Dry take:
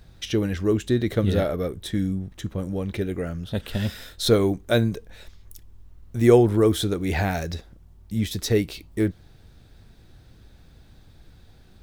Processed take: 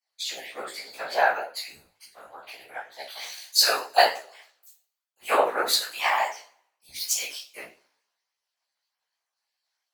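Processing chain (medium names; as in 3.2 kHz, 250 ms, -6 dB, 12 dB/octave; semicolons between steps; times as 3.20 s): random holes in the spectrogram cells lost 23%; high-pass 640 Hz 24 dB/octave; in parallel at 0 dB: compression, threshold -43 dBFS, peak gain reduction 21 dB; on the sum: two-slope reverb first 0.47 s, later 2.3 s, from -25 dB, DRR -6.5 dB; whisper effect; chorus 2.8 Hz, delay 16.5 ms, depth 5.4 ms; tape speed +19%; three bands expanded up and down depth 100%; trim -4 dB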